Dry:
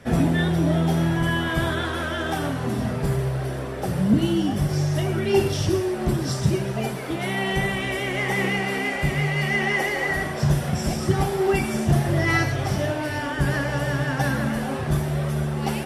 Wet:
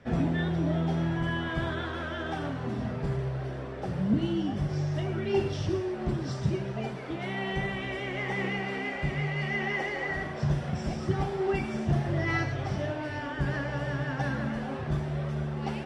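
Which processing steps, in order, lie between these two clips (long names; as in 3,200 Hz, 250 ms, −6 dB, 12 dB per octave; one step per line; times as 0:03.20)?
high-frequency loss of the air 120 metres
level −7 dB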